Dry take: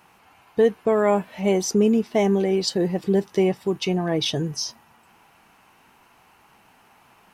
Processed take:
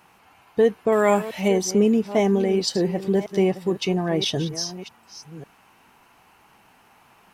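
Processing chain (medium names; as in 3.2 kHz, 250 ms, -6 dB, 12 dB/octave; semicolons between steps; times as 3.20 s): chunks repeated in reverse 544 ms, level -13.5 dB; 0.92–1.48 s: treble shelf 2.1 kHz +11 dB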